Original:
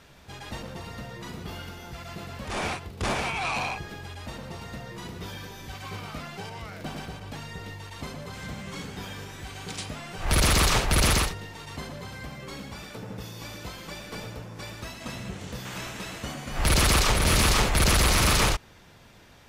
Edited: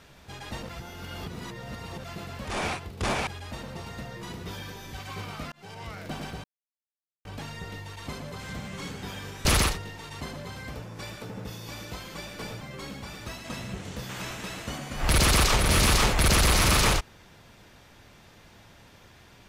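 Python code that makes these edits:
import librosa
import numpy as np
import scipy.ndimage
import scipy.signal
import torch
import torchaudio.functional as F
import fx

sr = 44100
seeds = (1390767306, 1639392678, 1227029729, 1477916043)

y = fx.edit(x, sr, fx.reverse_span(start_s=0.69, length_s=1.35),
    fx.cut(start_s=3.27, length_s=0.75),
    fx.fade_in_span(start_s=6.27, length_s=0.34),
    fx.insert_silence(at_s=7.19, length_s=0.81),
    fx.cut(start_s=9.39, length_s=1.62),
    fx.swap(start_s=12.3, length_s=0.59, other_s=14.34, other_length_s=0.42), tone=tone)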